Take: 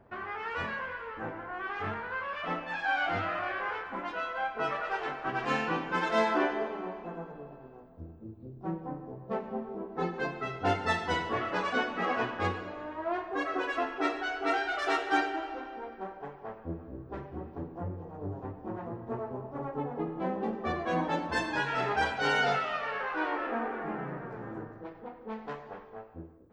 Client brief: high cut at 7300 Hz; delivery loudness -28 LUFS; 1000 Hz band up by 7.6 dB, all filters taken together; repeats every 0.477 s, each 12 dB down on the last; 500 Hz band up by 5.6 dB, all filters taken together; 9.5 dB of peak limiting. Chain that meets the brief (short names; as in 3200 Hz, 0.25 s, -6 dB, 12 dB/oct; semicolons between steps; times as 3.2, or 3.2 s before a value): LPF 7300 Hz; bell 500 Hz +4.5 dB; bell 1000 Hz +8.5 dB; limiter -17.5 dBFS; feedback echo 0.477 s, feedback 25%, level -12 dB; gain +1.5 dB